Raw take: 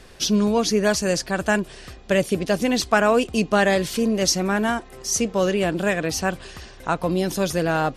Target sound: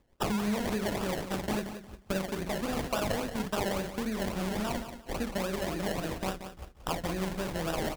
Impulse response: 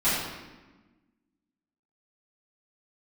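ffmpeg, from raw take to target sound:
-filter_complex "[0:a]asettb=1/sr,asplit=3[s0][s1][s2];[s0]atrim=end=3.854[s3];[s1]atrim=start=3.85:end=6.43,asetpts=PTS-STARTPTS,afade=t=in:d=0.004:c=qsin,afade=t=out:st=2.576:d=0.004:c=qsin,lowpass=3500[s4];[s2]atrim=start=6.426[s5];[s3][s4]acrossfade=d=0.004:c1=hsin:c2=qsin[s6];[s6][s5]acrossfade=d=0.004:c1=qsin:c2=hsin,aecho=1:1:42|58:0.473|0.355,acompressor=threshold=0.0141:ratio=3,agate=range=0.00282:threshold=0.0126:ratio=16:detection=peak,asubboost=boost=3.5:cutoff=71,acompressor=mode=upward:threshold=0.00224:ratio=2.5,equalizer=f=460:w=1.5:g=-4,acrusher=samples=29:mix=1:aa=0.000001:lfo=1:lforange=17.4:lforate=3.6,aecho=1:1:179|358|537:0.316|0.0759|0.0182,volume=1.58"

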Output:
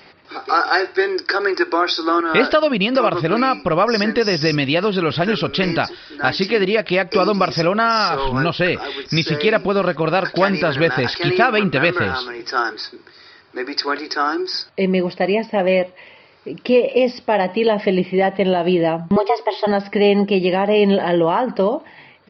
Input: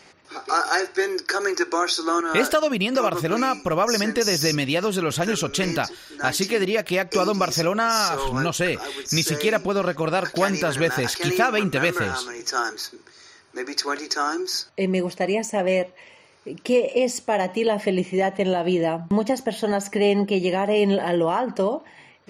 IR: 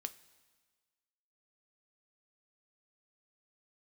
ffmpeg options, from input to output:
-filter_complex "[0:a]asettb=1/sr,asplit=3[s0][s1][s2];[s0]atrim=end=19.164[s3];[s1]atrim=start=19.16:end=19.67,asetpts=PTS-STARTPTS,afade=t=in:d=0.004:c=qsin,afade=t=out:st=0.506:d=0.004:c=qsin,afreqshift=190[s4];[s2]atrim=start=19.666[s5];[s3][s4]acrossfade=d=0.004:c1=hsin:c2=qsin[s6];[s6][s5]acrossfade=d=0.004:c1=qsin:c2=hsin,aresample=11025,aresample=44100,volume=1.78"

